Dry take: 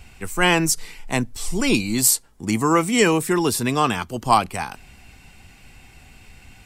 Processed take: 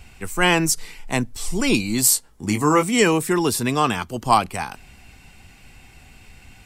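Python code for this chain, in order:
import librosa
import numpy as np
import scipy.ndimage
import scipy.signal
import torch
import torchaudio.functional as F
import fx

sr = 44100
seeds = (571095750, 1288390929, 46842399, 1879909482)

y = fx.doubler(x, sr, ms=20.0, db=-6.5, at=(2.09, 2.83))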